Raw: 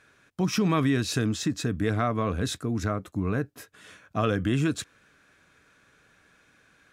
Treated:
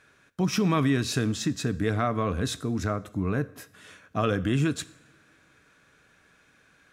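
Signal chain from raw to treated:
coupled-rooms reverb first 0.66 s, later 2.7 s, from −20 dB, DRR 15.5 dB

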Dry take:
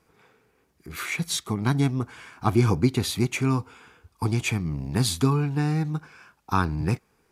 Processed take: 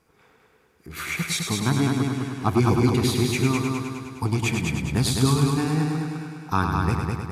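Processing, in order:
echo machine with several playback heads 103 ms, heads first and second, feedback 59%, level −6 dB

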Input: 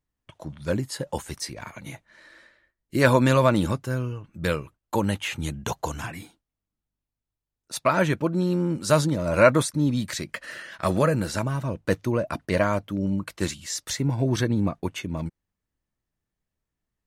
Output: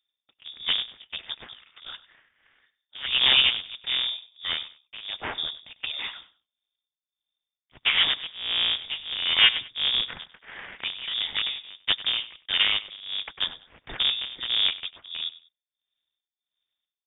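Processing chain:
sub-harmonics by changed cycles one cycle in 3, inverted
amplitude tremolo 1.5 Hz, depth 89%
on a send: repeating echo 97 ms, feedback 26%, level −17 dB
on the sum: voice inversion scrambler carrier 3,600 Hz

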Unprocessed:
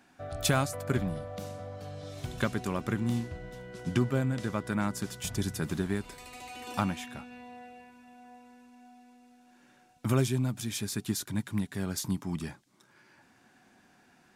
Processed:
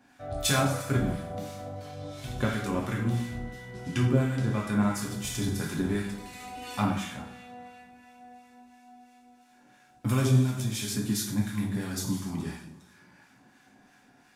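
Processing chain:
coupled-rooms reverb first 0.77 s, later 2.3 s, from −18 dB, DRR −2.5 dB
two-band tremolo in antiphase 2.9 Hz, depth 50%, crossover 1,100 Hz

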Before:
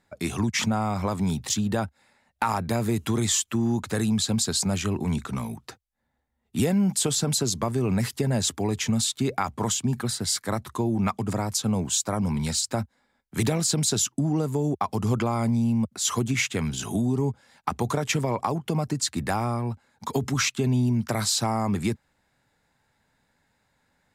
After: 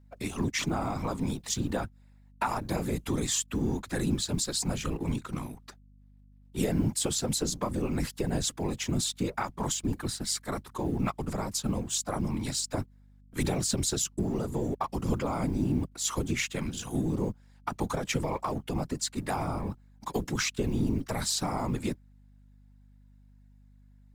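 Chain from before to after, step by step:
mu-law and A-law mismatch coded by A
random phases in short frames
mains hum 50 Hz, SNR 25 dB
level −4.5 dB

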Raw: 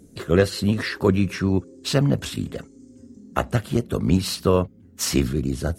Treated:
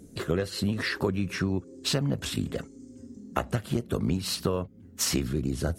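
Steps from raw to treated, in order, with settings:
downward compressor 10 to 1, threshold −23 dBFS, peak gain reduction 12.5 dB

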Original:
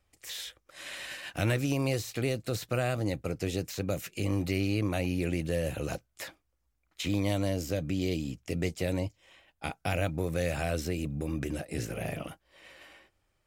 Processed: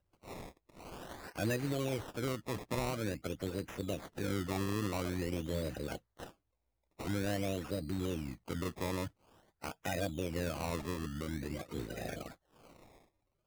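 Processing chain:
spectral magnitudes quantised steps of 30 dB
sample-and-hold swept by an LFO 20×, swing 100% 0.48 Hz
level −5.5 dB

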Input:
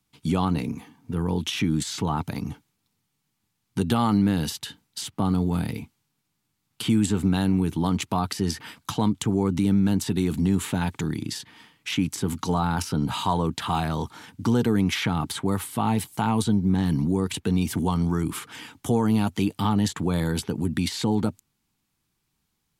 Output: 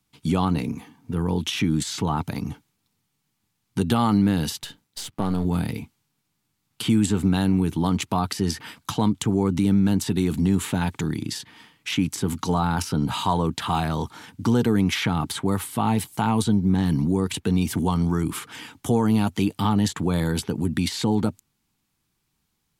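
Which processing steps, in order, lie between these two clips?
0:04.63–0:05.45: gain on one half-wave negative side −7 dB
level +1.5 dB

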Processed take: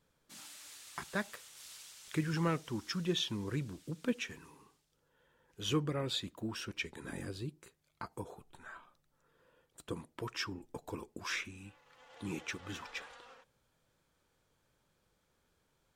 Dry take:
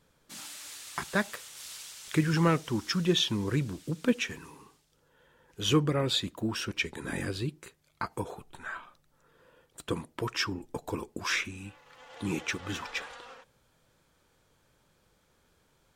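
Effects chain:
0:07.10–0:09.99: dynamic equaliser 2,200 Hz, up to −5 dB, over −53 dBFS, Q 0.78
level −8 dB

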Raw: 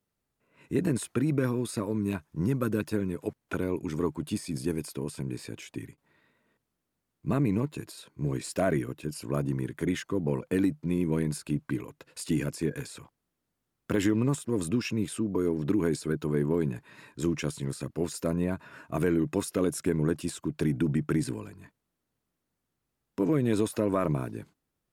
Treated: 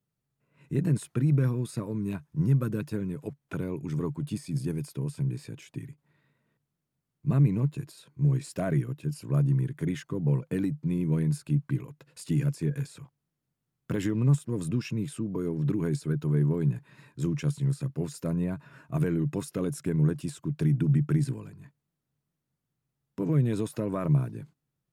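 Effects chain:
parametric band 140 Hz +14.5 dB 0.66 octaves
level −5.5 dB

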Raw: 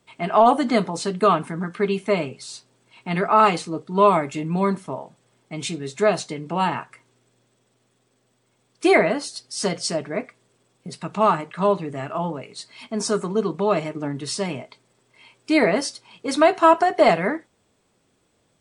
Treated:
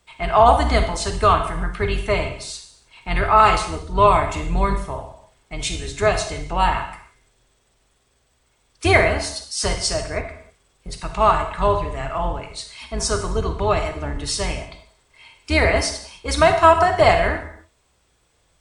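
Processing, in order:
sub-octave generator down 2 octaves, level 0 dB
parametric band 240 Hz −11 dB 2 octaves
convolution reverb, pre-delay 36 ms, DRR 6.5 dB
level +4 dB

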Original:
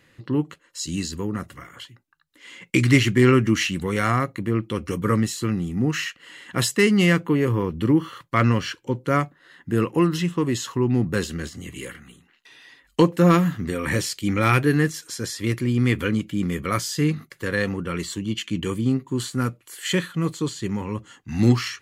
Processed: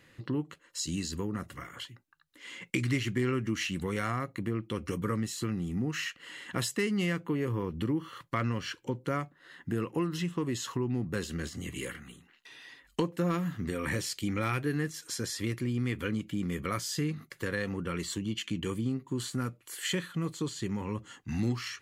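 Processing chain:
downward compressor 2.5 to 1, threshold −30 dBFS, peak gain reduction 13 dB
level −2 dB

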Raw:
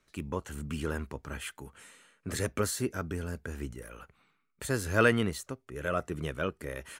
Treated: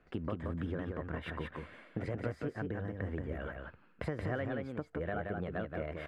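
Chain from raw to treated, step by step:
low-pass filter 1,300 Hz 12 dB per octave
downward compressor 12 to 1, threshold −42 dBFS, peak gain reduction 22 dB
speed change +15%
single-tap delay 177 ms −4 dB
level +8 dB

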